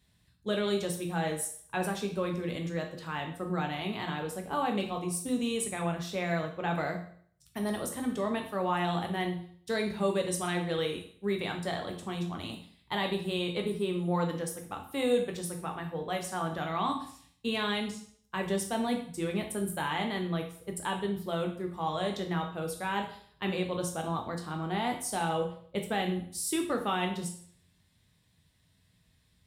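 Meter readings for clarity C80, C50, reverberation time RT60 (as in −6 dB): 12.0 dB, 8.0 dB, 0.55 s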